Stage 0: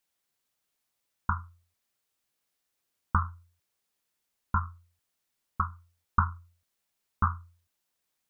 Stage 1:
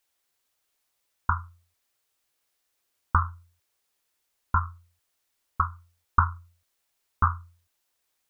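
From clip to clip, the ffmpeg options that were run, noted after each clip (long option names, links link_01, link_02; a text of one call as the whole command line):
ffmpeg -i in.wav -af "equalizer=frequency=180:width_type=o:width=0.88:gain=-10,volume=4.5dB" out.wav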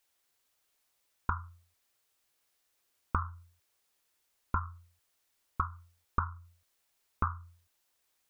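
ffmpeg -i in.wav -af "acompressor=threshold=-30dB:ratio=3" out.wav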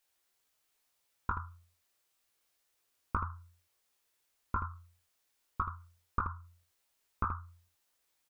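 ffmpeg -i in.wav -af "aecho=1:1:19|79:0.562|0.422,volume=-3dB" out.wav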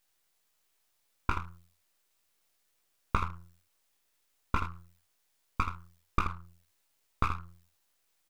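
ffmpeg -i in.wav -af "aeval=exprs='max(val(0),0)':channel_layout=same,volume=6.5dB" out.wav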